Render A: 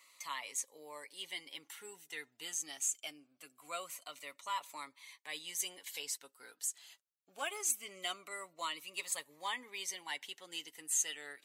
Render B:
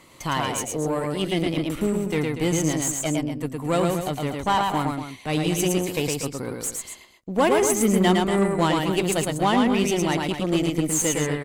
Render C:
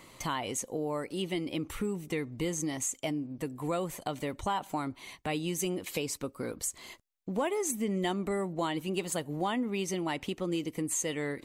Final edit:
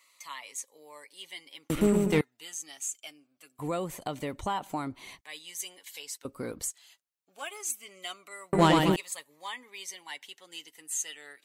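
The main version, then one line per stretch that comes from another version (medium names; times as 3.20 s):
A
1.70–2.21 s: from B
3.59–5.21 s: from C
6.25–6.71 s: from C
8.53–8.96 s: from B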